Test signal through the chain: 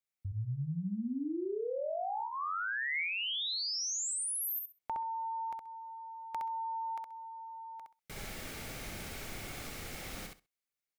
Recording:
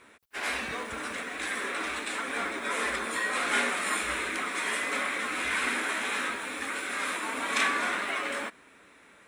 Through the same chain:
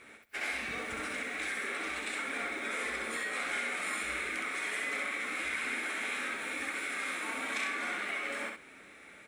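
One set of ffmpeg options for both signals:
-af "equalizer=f=2200:w=7:g=7.5,bandreject=f=1000:w=6.5,acompressor=threshold=0.0141:ratio=3,aecho=1:1:65|130|195:0.631|0.101|0.0162"

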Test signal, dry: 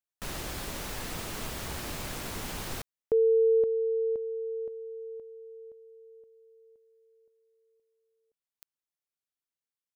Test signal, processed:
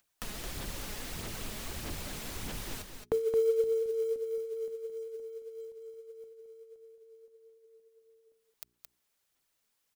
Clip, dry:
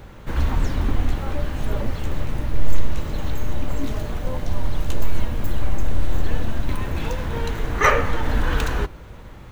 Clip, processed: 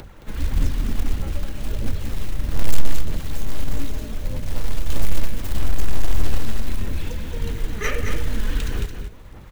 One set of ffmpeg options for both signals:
-filter_complex "[0:a]acrossover=split=470|1800[s0][s1][s2];[s1]acompressor=threshold=0.00501:ratio=12:release=362:knee=6[s3];[s0][s3][s2]amix=inputs=3:normalize=0,bandreject=f=60:t=h:w=6,bandreject=f=120:t=h:w=6,bandreject=f=180:t=h:w=6,bandreject=f=240:t=h:w=6,bandreject=f=300:t=h:w=6,bandreject=f=360:t=h:w=6,bandreject=f=420:t=h:w=6,aphaser=in_gain=1:out_gain=1:delay=4.8:decay=0.44:speed=1.6:type=sinusoidal,acrusher=bits=6:mode=log:mix=0:aa=0.000001,acompressor=mode=upward:threshold=0.0141:ratio=1.5:attack=78:release=313:knee=2.83:detection=peak,asplit=2[s4][s5];[s5]aecho=0:1:220:0.447[s6];[s4][s6]amix=inputs=2:normalize=0,volume=0.596"

